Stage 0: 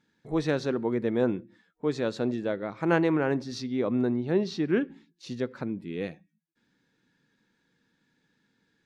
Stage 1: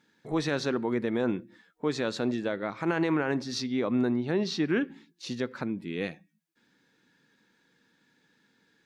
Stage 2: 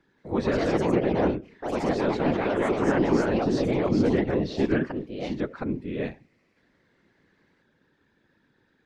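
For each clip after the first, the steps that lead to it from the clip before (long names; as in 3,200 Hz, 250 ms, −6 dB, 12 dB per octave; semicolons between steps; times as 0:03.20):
low-shelf EQ 150 Hz −11 dB; brickwall limiter −20.5 dBFS, peak gain reduction 10.5 dB; dynamic equaliser 480 Hz, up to −5 dB, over −44 dBFS, Q 0.92; level +5.5 dB
random phases in short frames; low-pass filter 1,400 Hz 6 dB per octave; delay with pitch and tempo change per echo 178 ms, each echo +3 semitones, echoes 3; level +3 dB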